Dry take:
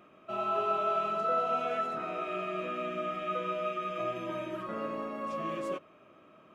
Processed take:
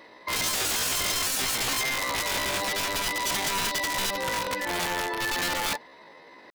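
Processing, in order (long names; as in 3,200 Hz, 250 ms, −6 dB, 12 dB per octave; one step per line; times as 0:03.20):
wrap-around overflow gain 30 dB
pitch shifter +8 semitones
level +8.5 dB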